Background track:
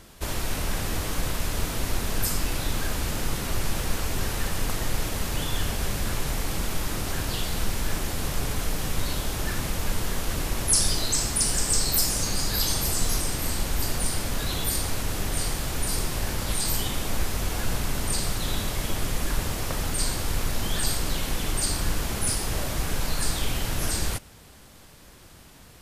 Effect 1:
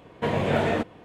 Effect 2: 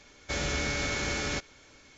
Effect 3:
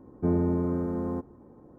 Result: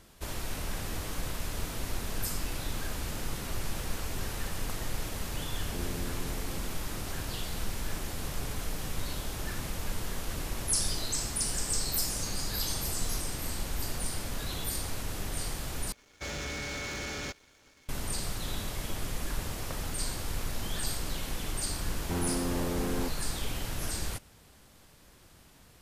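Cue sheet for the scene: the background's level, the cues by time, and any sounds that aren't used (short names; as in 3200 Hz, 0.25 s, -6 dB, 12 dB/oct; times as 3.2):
background track -7.5 dB
5.51 add 3 -15.5 dB
15.92 replace with 2 -13 dB + sample leveller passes 3
21.87 add 3 -14.5 dB + sample leveller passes 5
not used: 1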